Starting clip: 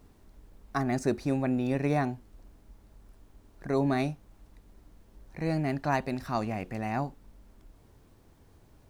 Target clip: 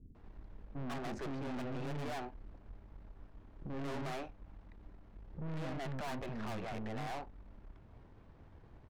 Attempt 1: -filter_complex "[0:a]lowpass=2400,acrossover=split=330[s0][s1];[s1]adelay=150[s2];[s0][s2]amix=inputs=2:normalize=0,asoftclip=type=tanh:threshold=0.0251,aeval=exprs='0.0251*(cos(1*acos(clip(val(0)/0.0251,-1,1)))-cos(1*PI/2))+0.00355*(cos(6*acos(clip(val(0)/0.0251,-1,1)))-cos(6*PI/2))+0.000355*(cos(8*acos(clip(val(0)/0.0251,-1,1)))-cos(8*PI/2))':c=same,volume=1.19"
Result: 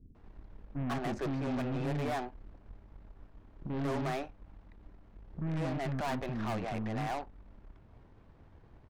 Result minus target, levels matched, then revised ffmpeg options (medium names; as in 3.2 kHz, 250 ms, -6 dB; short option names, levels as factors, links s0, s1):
saturation: distortion -5 dB
-filter_complex "[0:a]lowpass=2400,acrossover=split=330[s0][s1];[s1]adelay=150[s2];[s0][s2]amix=inputs=2:normalize=0,asoftclip=type=tanh:threshold=0.00891,aeval=exprs='0.0251*(cos(1*acos(clip(val(0)/0.0251,-1,1)))-cos(1*PI/2))+0.00355*(cos(6*acos(clip(val(0)/0.0251,-1,1)))-cos(6*PI/2))+0.000355*(cos(8*acos(clip(val(0)/0.0251,-1,1)))-cos(8*PI/2))':c=same,volume=1.19"